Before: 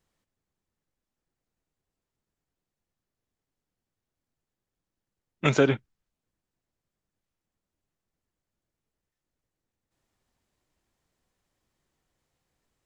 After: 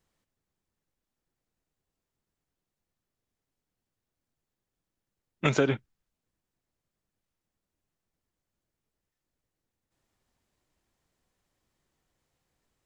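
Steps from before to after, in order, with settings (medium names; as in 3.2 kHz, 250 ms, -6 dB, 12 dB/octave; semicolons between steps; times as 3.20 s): compression 3:1, threshold -20 dBFS, peak gain reduction 4.5 dB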